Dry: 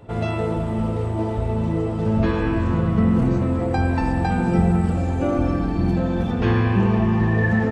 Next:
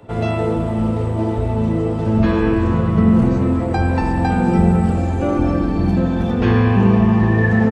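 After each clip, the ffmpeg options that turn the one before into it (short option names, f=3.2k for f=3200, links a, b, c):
-filter_complex "[0:a]acrossover=split=150|860[a][b][c];[a]aeval=exprs='sgn(val(0))*max(abs(val(0))-0.00141,0)':c=same[d];[b]aecho=1:1:81.63|239.1:0.708|0.316[e];[d][e][c]amix=inputs=3:normalize=0,volume=3dB"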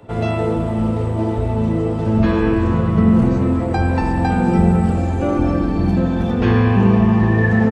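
-af anull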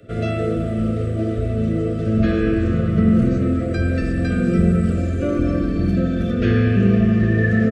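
-af "asuperstop=centerf=900:order=12:qfactor=1.8,volume=-2dB"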